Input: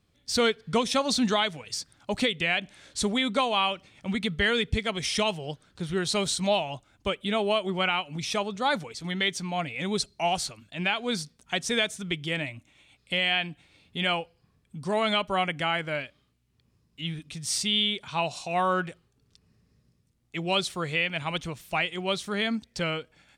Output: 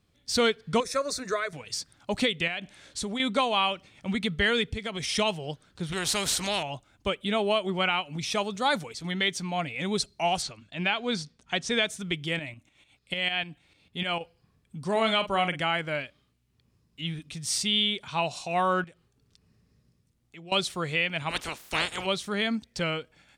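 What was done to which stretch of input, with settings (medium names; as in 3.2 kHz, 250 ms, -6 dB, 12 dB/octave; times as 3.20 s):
0.80–1.53 s: static phaser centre 840 Hz, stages 6
2.47–3.20 s: compression 3:1, threshold -30 dBFS
4.67–5.09 s: compression, threshold -28 dBFS
5.92–6.63 s: spectrum-flattening compressor 2:1
8.37–8.93 s: treble shelf 4.8 kHz -> 9 kHz +9 dB
10.42–11.87 s: low-pass 6.4 kHz
12.39–14.21 s: tremolo saw up 6.7 Hz, depth 65%
14.91–15.59 s: doubling 45 ms -10 dB
18.84–20.52 s: compression 2:1, threshold -55 dBFS
21.29–22.05 s: spectral peaks clipped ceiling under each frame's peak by 27 dB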